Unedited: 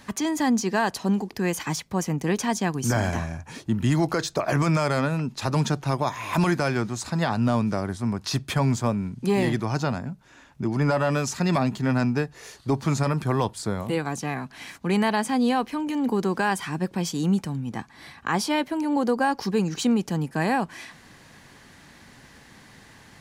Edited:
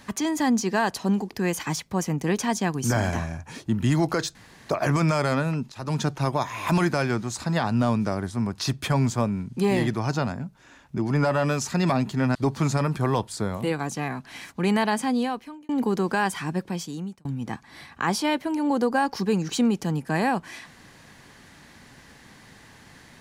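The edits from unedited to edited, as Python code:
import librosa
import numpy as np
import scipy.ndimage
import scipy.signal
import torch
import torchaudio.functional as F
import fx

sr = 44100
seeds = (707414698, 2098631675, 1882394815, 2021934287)

y = fx.edit(x, sr, fx.insert_room_tone(at_s=4.35, length_s=0.34),
    fx.fade_in_from(start_s=5.38, length_s=0.36, floor_db=-17.0),
    fx.cut(start_s=12.01, length_s=0.6),
    fx.fade_out_span(start_s=15.27, length_s=0.68),
    fx.fade_out_span(start_s=16.77, length_s=0.74), tone=tone)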